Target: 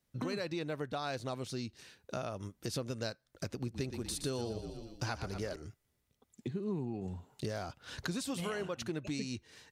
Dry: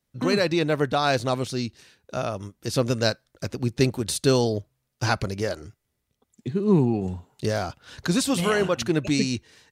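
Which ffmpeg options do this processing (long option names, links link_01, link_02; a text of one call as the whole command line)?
ffmpeg -i in.wav -filter_complex "[0:a]asettb=1/sr,asplit=3[link_01][link_02][link_03];[link_01]atrim=end=3.504[link_04];[link_02]atrim=start=3.5:end=5.56,asetpts=PTS-STARTPTS,afade=type=in:duration=0.004:curve=qsin,afade=type=out:start_time=2.056:duration=0.004:curve=qsin,asplit=6[link_05][link_06][link_07][link_08][link_09][link_10];[link_06]adelay=119,afreqshift=-36,volume=-10.5dB[link_11];[link_07]adelay=238,afreqshift=-72,volume=-17.2dB[link_12];[link_08]adelay=357,afreqshift=-108,volume=-24dB[link_13];[link_09]adelay=476,afreqshift=-144,volume=-30.7dB[link_14];[link_10]adelay=595,afreqshift=-180,volume=-37.5dB[link_15];[link_05][link_11][link_12][link_13][link_14][link_15]amix=inputs=6:normalize=0,atrim=end_sample=90846[link_16];[link_03]atrim=start=5.556[link_17];[link_04][link_16]acrossfade=duration=0.004:curve1=hsin:curve2=qsin[link_18];[link_18][link_17]acrossfade=duration=0.004:curve1=qsin:curve2=hsin,acompressor=threshold=-35dB:ratio=4,volume=-2dB" out.wav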